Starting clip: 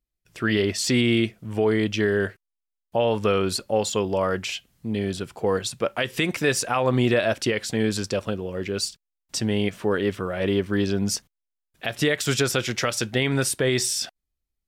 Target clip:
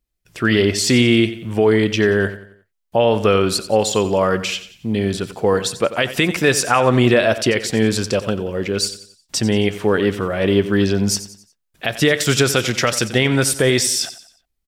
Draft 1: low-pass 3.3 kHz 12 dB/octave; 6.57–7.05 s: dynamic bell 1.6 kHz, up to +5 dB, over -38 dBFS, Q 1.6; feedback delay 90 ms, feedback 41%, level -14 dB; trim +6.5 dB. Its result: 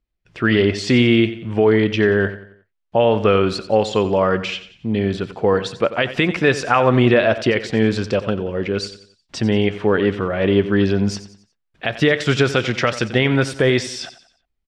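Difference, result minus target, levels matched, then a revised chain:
4 kHz band -3.5 dB
6.57–7.05 s: dynamic bell 1.6 kHz, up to +5 dB, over -38 dBFS, Q 1.6; feedback delay 90 ms, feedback 41%, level -14 dB; trim +6.5 dB

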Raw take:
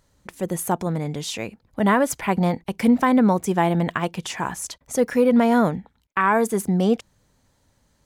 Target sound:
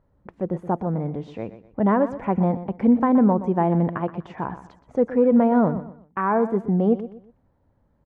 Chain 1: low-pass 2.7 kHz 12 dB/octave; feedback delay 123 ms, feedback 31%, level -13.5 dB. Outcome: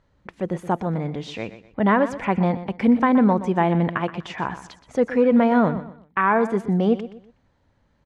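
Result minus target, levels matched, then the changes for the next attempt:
2 kHz band +8.5 dB
change: low-pass 980 Hz 12 dB/octave

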